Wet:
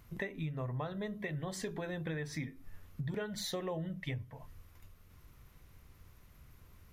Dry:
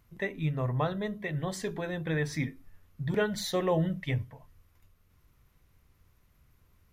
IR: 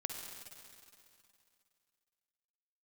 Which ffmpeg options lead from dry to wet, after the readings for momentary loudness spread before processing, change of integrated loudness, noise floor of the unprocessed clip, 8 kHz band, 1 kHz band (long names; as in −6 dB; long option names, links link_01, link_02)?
7 LU, −8.0 dB, −66 dBFS, −4.0 dB, −9.5 dB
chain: -af "acompressor=threshold=-43dB:ratio=6,volume=6dB"